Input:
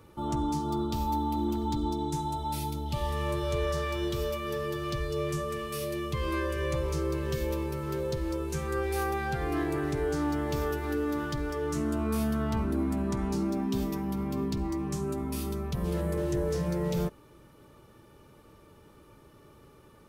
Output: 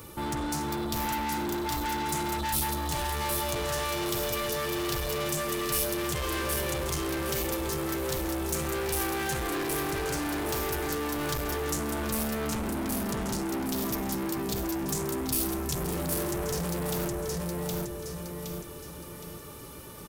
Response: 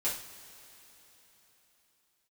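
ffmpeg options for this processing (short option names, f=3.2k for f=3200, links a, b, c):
-filter_complex "[0:a]asettb=1/sr,asplit=3[a][b][c];[a]atrim=end=13.564[d];[b]atrim=start=13.56:end=14.37,asetpts=PTS-STARTPTS,afade=t=in:d=0.004:c=qsin,afade=t=out:st=0.806:d=0.004:c=qsin,highpass=f=230:p=1[e];[c]atrim=start=14.366[f];[d][e]acrossfade=d=0.004:c1=hsin:c2=qsin[g];[g][f]acrossfade=d=0.004:c1=qsin:c2=hsin,asplit=2[h][i];[i]alimiter=level_in=6.5dB:limit=-24dB:level=0:latency=1,volume=-6.5dB,volume=1dB[j];[h][j]amix=inputs=2:normalize=0,aecho=1:1:767|1534|2301|3068|3835:0.631|0.233|0.0864|0.032|0.0118,asoftclip=type=tanh:threshold=-30.5dB,crystalizer=i=3:c=0,volume=1dB"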